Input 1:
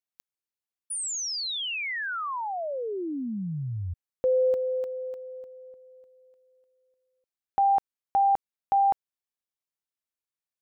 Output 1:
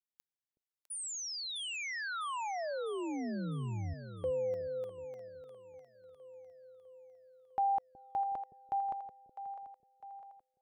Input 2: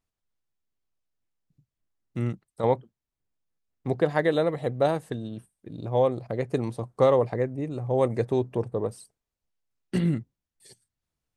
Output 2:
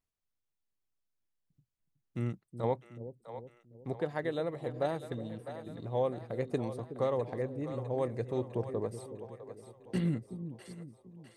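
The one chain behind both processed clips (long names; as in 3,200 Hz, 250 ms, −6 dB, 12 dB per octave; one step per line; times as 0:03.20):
speech leveller within 3 dB 0.5 s
echo with a time of its own for lows and highs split 490 Hz, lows 370 ms, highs 653 ms, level −10.5 dB
level −9 dB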